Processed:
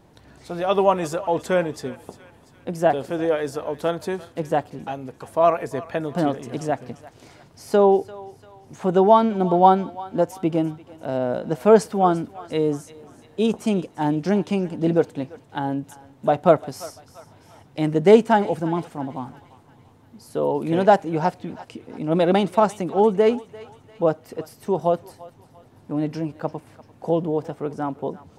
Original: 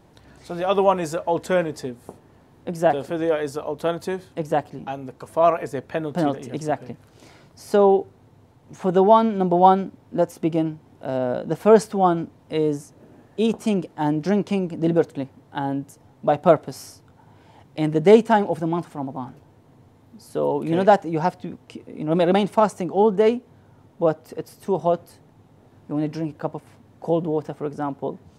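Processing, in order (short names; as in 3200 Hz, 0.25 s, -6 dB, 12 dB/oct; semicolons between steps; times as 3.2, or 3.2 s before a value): thinning echo 0.344 s, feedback 55%, high-pass 890 Hz, level -16 dB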